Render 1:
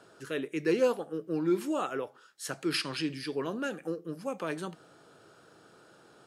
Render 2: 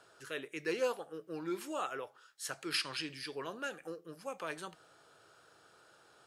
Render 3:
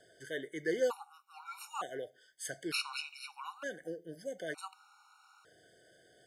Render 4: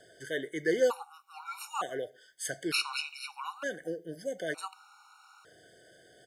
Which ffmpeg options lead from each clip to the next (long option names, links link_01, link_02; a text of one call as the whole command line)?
ffmpeg -i in.wav -af "equalizer=frequency=220:width=0.63:gain=-12.5,volume=-2dB" out.wav
ffmpeg -i in.wav -af "afftfilt=real='re*gt(sin(2*PI*0.55*pts/sr)*(1-2*mod(floor(b*sr/1024/740),2)),0)':imag='im*gt(sin(2*PI*0.55*pts/sr)*(1-2*mod(floor(b*sr/1024/740),2)),0)':win_size=1024:overlap=0.75,volume=2.5dB" out.wav
ffmpeg -i in.wav -filter_complex "[0:a]acontrast=89,asplit=2[link_01][link_02];[link_02]adelay=120,highpass=300,lowpass=3400,asoftclip=type=hard:threshold=-23.5dB,volume=-29dB[link_03];[link_01][link_03]amix=inputs=2:normalize=0,volume=-2dB" out.wav